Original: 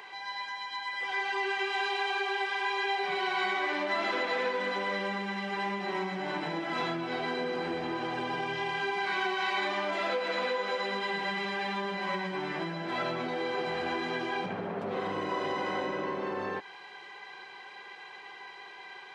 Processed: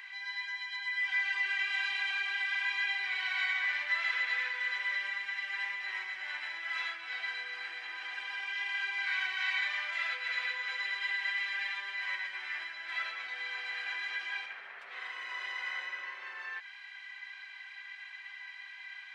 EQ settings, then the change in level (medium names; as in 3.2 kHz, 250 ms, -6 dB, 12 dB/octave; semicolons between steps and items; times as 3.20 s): resonant high-pass 1.9 kHz, resonance Q 2.5; -4.5 dB